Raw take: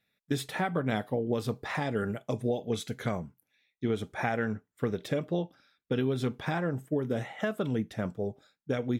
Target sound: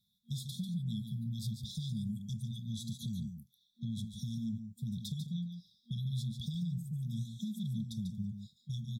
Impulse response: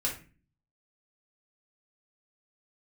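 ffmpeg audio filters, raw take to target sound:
-filter_complex "[0:a]afftfilt=real='re*(1-between(b*sr/4096,230,3300))':imag='im*(1-between(b*sr/4096,230,3300))':win_size=4096:overlap=0.75,acrossover=split=380[s0][s1];[s1]acompressor=threshold=0.00708:ratio=6[s2];[s0][s2]amix=inputs=2:normalize=0,asplit=2[s3][s4];[s4]alimiter=level_in=3.55:limit=0.0631:level=0:latency=1:release=31,volume=0.282,volume=1[s5];[s3][s5]amix=inputs=2:normalize=0,acompressor=threshold=0.0282:ratio=4,aecho=1:1:144:0.422,volume=0.668"

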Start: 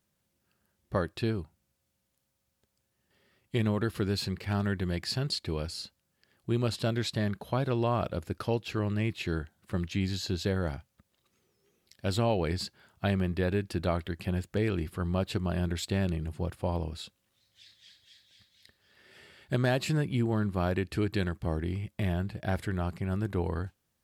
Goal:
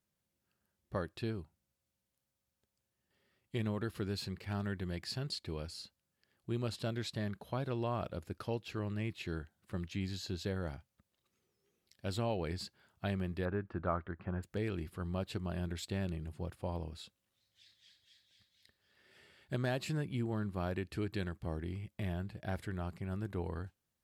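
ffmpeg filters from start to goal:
-filter_complex "[0:a]asettb=1/sr,asplit=3[s0][s1][s2];[s0]atrim=end=13.454[s3];[s1]atrim=start=13.45:end=14.43,asetpts=PTS-STARTPTS,afade=t=in:d=0.004:c=qsin,afade=t=out:st=0.976:d=0.004:c=qsin,lowpass=f=1300:t=q:w=2.8[s4];[s2]atrim=start=14.426[s5];[s3][s4]acrossfade=d=0.004:c1=hsin:c2=qsin[s6];[s6][s5]acrossfade=d=0.004:c1=qsin:c2=hsin,volume=0.398"

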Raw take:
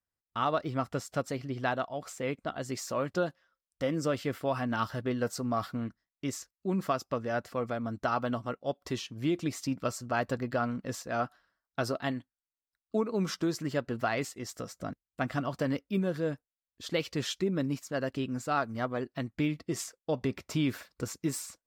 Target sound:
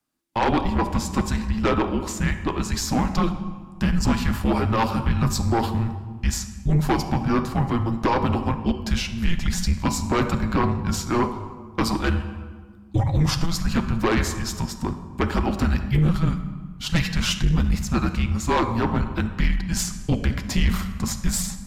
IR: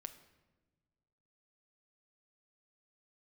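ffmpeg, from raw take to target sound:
-filter_complex "[1:a]atrim=start_sample=2205,asetrate=27783,aresample=44100[s0];[0:a][s0]afir=irnorm=-1:irlink=0,acontrast=55,afreqshift=-340,aeval=exprs='0.282*(cos(1*acos(clip(val(0)/0.282,-1,1)))-cos(1*PI/2))+0.126*(cos(5*acos(clip(val(0)/0.282,-1,1)))-cos(5*PI/2))+0.0398*(cos(6*acos(clip(val(0)/0.282,-1,1)))-cos(6*PI/2))':c=same,volume=0.841"

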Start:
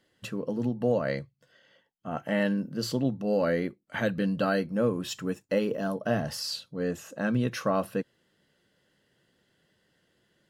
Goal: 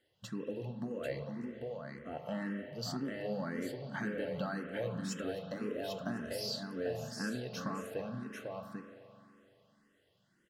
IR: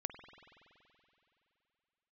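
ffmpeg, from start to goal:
-filter_complex "[0:a]acompressor=threshold=0.0398:ratio=6,aecho=1:1:794:0.596[s0];[1:a]atrim=start_sample=2205,asetrate=48510,aresample=44100[s1];[s0][s1]afir=irnorm=-1:irlink=0,asplit=2[s2][s3];[s3]afreqshift=1.9[s4];[s2][s4]amix=inputs=2:normalize=1,volume=0.891"

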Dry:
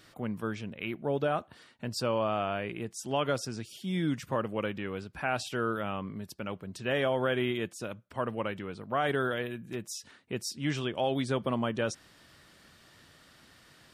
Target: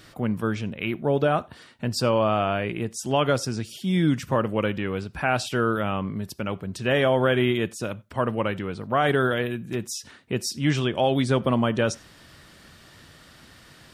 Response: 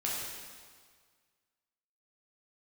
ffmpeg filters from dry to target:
-filter_complex "[0:a]lowshelf=f=150:g=5.5,asplit=2[s0][s1];[1:a]atrim=start_sample=2205,atrim=end_sample=4410[s2];[s1][s2]afir=irnorm=-1:irlink=0,volume=0.0841[s3];[s0][s3]amix=inputs=2:normalize=0,volume=2.11"

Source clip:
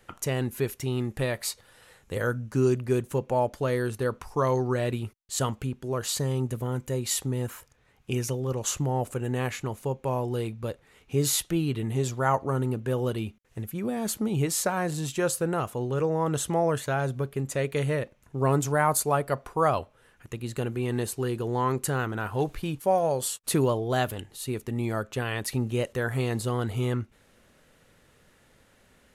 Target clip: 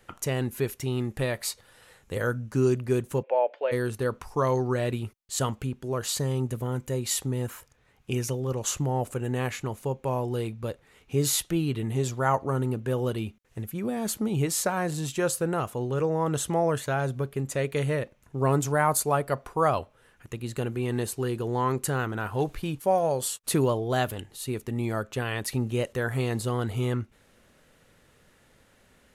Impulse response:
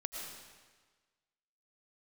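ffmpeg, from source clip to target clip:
-filter_complex "[0:a]asplit=3[s0][s1][s2];[s0]afade=t=out:st=3.22:d=0.02[s3];[s1]highpass=f=470:w=0.5412,highpass=f=470:w=1.3066,equalizer=f=540:t=q:w=4:g=6,equalizer=f=1200:t=q:w=4:g=-9,equalizer=f=2500:t=q:w=4:g=5,lowpass=f=3100:w=0.5412,lowpass=f=3100:w=1.3066,afade=t=in:st=3.22:d=0.02,afade=t=out:st=3.71:d=0.02[s4];[s2]afade=t=in:st=3.71:d=0.02[s5];[s3][s4][s5]amix=inputs=3:normalize=0"

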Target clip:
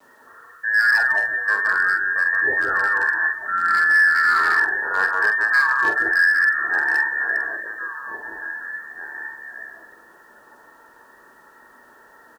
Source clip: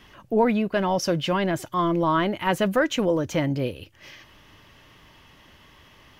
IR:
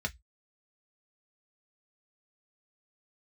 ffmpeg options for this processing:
-filter_complex "[0:a]acrusher=bits=5:mode=log:mix=0:aa=0.000001,lowshelf=f=110:g=-3,aecho=1:1:1132:0.211,adynamicequalizer=threshold=0.02:dfrequency=490:dqfactor=2.7:tfrequency=490:tqfactor=2.7:attack=5:release=100:ratio=0.375:range=1.5:mode=boostabove:tftype=bell,lowpass=f=3200:t=q:w=0.5098,lowpass=f=3200:t=q:w=0.6013,lowpass=f=3200:t=q:w=0.9,lowpass=f=3200:t=q:w=2.563,afreqshift=-3800,asplit=2[s0][s1];[1:a]atrim=start_sample=2205,adelay=84[s2];[s1][s2]afir=irnorm=-1:irlink=0,volume=0.562[s3];[s0][s3]amix=inputs=2:normalize=0,asetrate=22050,aresample=44100,asoftclip=type=hard:threshold=0.224,asplit=2[s4][s5];[s5]adelay=45,volume=0.422[s6];[s4][s6]amix=inputs=2:normalize=0,acrusher=bits=9:mix=0:aa=0.000001"

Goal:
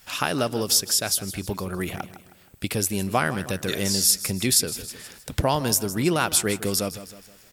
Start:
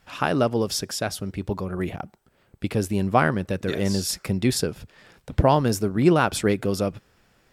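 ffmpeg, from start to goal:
-af "aecho=1:1:158|316|474|632:0.158|0.0634|0.0254|0.0101,crystalizer=i=5.5:c=0,acompressor=threshold=0.0398:ratio=1.5"

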